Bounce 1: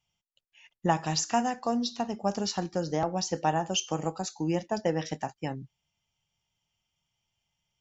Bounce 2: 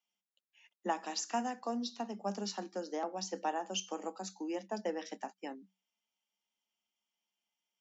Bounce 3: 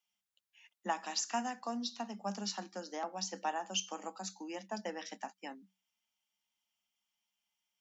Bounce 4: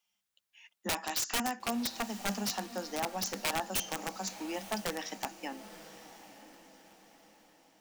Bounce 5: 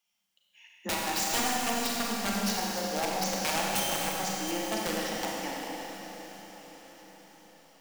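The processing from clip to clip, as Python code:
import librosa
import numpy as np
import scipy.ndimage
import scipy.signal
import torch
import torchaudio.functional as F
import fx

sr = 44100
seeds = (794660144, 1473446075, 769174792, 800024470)

y1 = scipy.signal.sosfilt(scipy.signal.cheby1(10, 1.0, 190.0, 'highpass', fs=sr, output='sos'), x)
y1 = y1 * 10.0 ** (-7.5 / 20.0)
y2 = fx.peak_eq(y1, sr, hz=400.0, db=-10.5, octaves=1.3)
y2 = y2 * 10.0 ** (2.5 / 20.0)
y3 = (np.mod(10.0 ** (30.0 / 20.0) * y2 + 1.0, 2.0) - 1.0) / 10.0 ** (30.0 / 20.0)
y3 = fx.echo_diffused(y3, sr, ms=964, feedback_pct=42, wet_db=-14)
y3 = y3 * 10.0 ** (5.0 / 20.0)
y4 = fx.reverse_delay(y3, sr, ms=376, wet_db=-11.0)
y4 = fx.rev_schroeder(y4, sr, rt60_s=2.9, comb_ms=32, drr_db=-3.0)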